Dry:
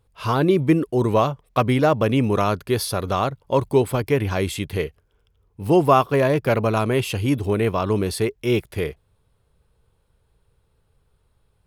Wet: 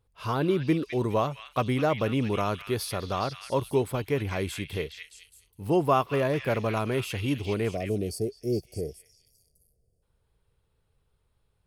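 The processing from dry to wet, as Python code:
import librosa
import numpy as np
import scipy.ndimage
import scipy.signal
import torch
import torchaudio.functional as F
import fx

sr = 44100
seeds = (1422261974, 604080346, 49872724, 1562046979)

y = fx.spec_box(x, sr, start_s=7.73, length_s=2.3, low_hz=760.0, high_hz=4400.0, gain_db=-25)
y = fx.echo_stepped(y, sr, ms=208, hz=2500.0, octaves=0.7, feedback_pct=70, wet_db=-2)
y = y * librosa.db_to_amplitude(-7.5)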